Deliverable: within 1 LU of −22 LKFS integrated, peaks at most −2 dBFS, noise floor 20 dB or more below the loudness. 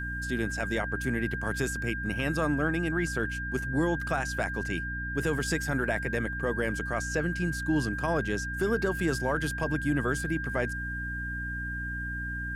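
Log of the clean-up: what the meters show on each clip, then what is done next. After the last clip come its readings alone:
mains hum 60 Hz; hum harmonics up to 300 Hz; level of the hum −35 dBFS; interfering tone 1,600 Hz; level of the tone −34 dBFS; integrated loudness −30.0 LKFS; sample peak −15.0 dBFS; target loudness −22.0 LKFS
→ hum removal 60 Hz, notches 5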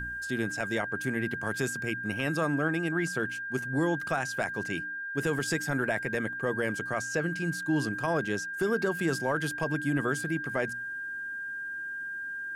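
mains hum none found; interfering tone 1,600 Hz; level of the tone −34 dBFS
→ notch filter 1,600 Hz, Q 30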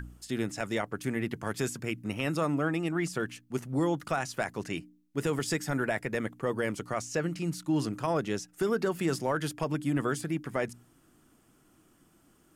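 interfering tone none found; integrated loudness −32.0 LKFS; sample peak −17.0 dBFS; target loudness −22.0 LKFS
→ level +10 dB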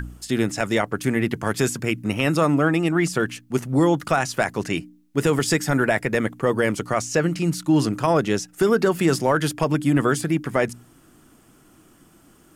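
integrated loudness −22.0 LKFS; sample peak −7.0 dBFS; background noise floor −54 dBFS

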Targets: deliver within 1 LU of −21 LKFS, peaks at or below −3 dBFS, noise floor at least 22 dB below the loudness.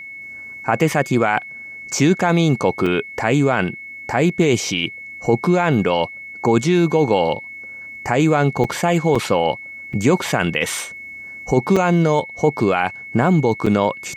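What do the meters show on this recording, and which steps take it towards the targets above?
number of dropouts 6; longest dropout 5.0 ms; interfering tone 2,200 Hz; level of the tone −32 dBFS; integrated loudness −18.5 LKFS; sample peak −2.5 dBFS; target loudness −21.0 LKFS
→ repair the gap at 0:02.86/0:08.64/0:09.15/0:09.93/0:11.76/0:13.66, 5 ms
notch filter 2,200 Hz, Q 30
level −2.5 dB

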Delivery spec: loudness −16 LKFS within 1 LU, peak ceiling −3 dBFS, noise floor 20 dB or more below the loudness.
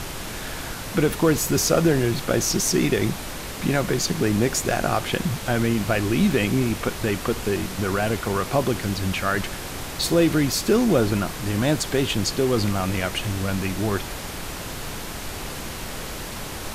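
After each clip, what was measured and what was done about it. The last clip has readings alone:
background noise floor −33 dBFS; target noise floor −44 dBFS; integrated loudness −23.5 LKFS; sample peak −7.0 dBFS; target loudness −16.0 LKFS
→ noise reduction from a noise print 11 dB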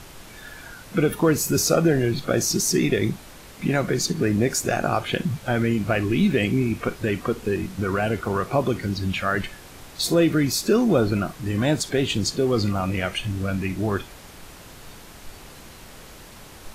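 background noise floor −44 dBFS; integrated loudness −23.0 LKFS; sample peak −7.0 dBFS; target loudness −16.0 LKFS
→ level +7 dB
brickwall limiter −3 dBFS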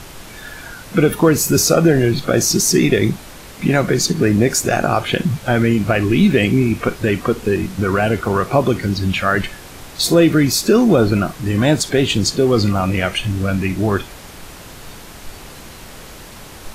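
integrated loudness −16.0 LKFS; sample peak −3.0 dBFS; background noise floor −37 dBFS

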